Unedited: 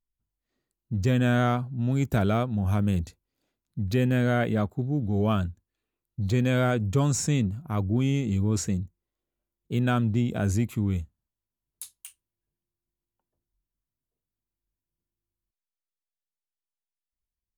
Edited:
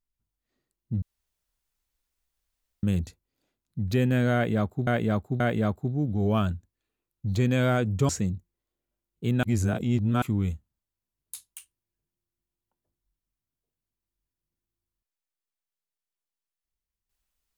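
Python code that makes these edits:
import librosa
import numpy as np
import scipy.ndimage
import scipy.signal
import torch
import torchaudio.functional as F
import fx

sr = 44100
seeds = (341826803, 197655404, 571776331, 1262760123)

y = fx.edit(x, sr, fx.room_tone_fill(start_s=1.02, length_s=1.81),
    fx.repeat(start_s=4.34, length_s=0.53, count=3),
    fx.cut(start_s=7.03, length_s=1.54),
    fx.reverse_span(start_s=9.91, length_s=0.79), tone=tone)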